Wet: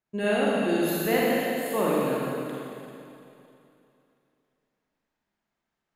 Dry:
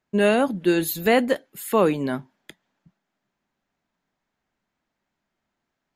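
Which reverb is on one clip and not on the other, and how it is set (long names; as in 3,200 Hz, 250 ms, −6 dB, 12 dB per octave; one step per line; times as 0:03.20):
four-comb reverb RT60 2.8 s, DRR −6 dB
level −10 dB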